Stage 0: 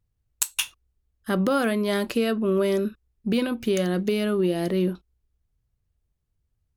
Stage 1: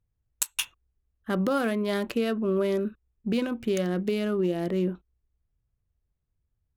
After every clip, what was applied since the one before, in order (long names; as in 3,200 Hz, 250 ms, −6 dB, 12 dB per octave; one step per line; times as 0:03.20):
adaptive Wiener filter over 9 samples
level −3 dB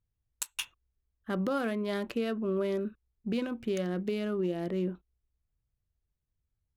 high-shelf EQ 8,300 Hz −6.5 dB
level −5 dB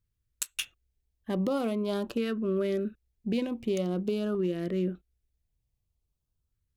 auto-filter notch saw up 0.46 Hz 700–2,200 Hz
level +2.5 dB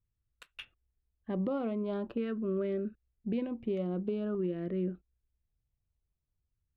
high-frequency loss of the air 490 metres
level −3 dB